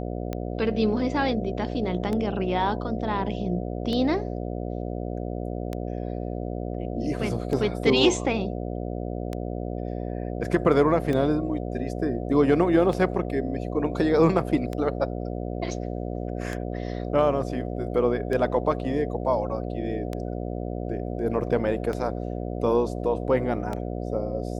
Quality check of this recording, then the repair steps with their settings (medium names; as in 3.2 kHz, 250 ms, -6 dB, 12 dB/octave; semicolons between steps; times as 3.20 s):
buzz 60 Hz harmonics 12 -31 dBFS
tick 33 1/3 rpm -17 dBFS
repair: de-click; de-hum 60 Hz, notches 12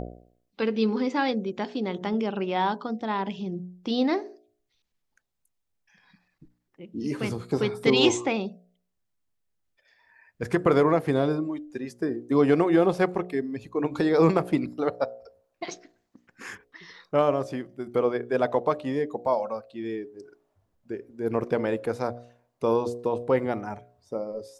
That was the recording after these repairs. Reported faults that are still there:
nothing left